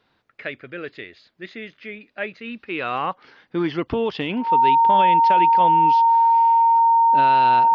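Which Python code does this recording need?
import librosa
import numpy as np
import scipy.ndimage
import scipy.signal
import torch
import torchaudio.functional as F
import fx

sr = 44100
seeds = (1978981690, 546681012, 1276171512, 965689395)

y = fx.notch(x, sr, hz=920.0, q=30.0)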